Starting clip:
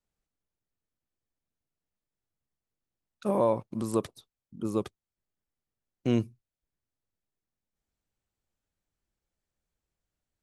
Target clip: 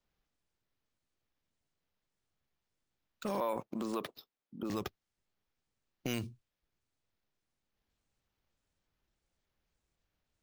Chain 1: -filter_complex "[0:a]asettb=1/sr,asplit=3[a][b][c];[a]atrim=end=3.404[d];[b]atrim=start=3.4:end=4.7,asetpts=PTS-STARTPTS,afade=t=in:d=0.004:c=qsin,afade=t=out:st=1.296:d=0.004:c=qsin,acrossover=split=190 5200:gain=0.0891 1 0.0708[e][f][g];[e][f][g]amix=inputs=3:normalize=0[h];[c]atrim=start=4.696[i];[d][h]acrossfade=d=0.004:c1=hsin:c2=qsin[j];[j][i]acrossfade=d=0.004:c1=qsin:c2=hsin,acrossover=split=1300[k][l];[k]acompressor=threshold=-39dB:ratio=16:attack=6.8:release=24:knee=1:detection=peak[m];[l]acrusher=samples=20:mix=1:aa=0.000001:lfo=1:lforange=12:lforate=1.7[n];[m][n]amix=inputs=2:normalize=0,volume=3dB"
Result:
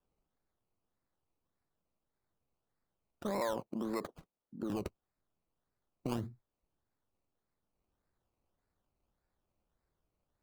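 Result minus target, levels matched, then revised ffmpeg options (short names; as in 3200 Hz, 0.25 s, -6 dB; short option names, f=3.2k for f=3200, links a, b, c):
decimation with a swept rate: distortion +15 dB
-filter_complex "[0:a]asettb=1/sr,asplit=3[a][b][c];[a]atrim=end=3.404[d];[b]atrim=start=3.4:end=4.7,asetpts=PTS-STARTPTS,afade=t=in:d=0.004:c=qsin,afade=t=out:st=1.296:d=0.004:c=qsin,acrossover=split=190 5200:gain=0.0891 1 0.0708[e][f][g];[e][f][g]amix=inputs=3:normalize=0[h];[c]atrim=start=4.696[i];[d][h]acrossfade=d=0.004:c1=hsin:c2=qsin[j];[j][i]acrossfade=d=0.004:c1=qsin:c2=hsin,acrossover=split=1300[k][l];[k]acompressor=threshold=-39dB:ratio=16:attack=6.8:release=24:knee=1:detection=peak[m];[l]acrusher=samples=4:mix=1:aa=0.000001:lfo=1:lforange=2.4:lforate=1.7[n];[m][n]amix=inputs=2:normalize=0,volume=3dB"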